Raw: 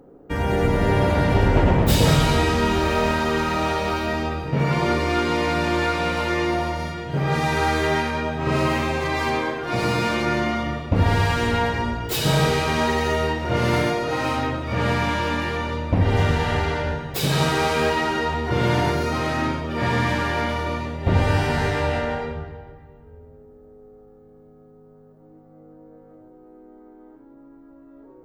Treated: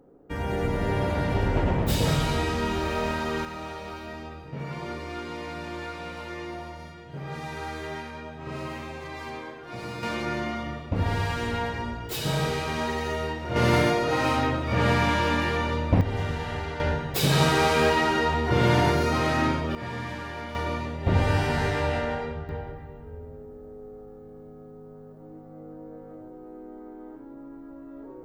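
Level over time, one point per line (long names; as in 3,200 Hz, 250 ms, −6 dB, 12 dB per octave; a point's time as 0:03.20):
−7 dB
from 0:03.45 −14 dB
from 0:10.03 −7.5 dB
from 0:13.56 −0.5 dB
from 0:16.01 −9.5 dB
from 0:16.80 −0.5 dB
from 0:19.75 −12.5 dB
from 0:20.55 −3.5 dB
from 0:22.49 +4.5 dB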